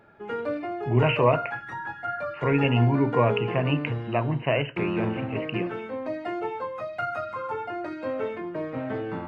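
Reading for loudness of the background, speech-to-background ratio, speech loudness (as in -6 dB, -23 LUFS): -32.0 LUFS, 6.5 dB, -25.5 LUFS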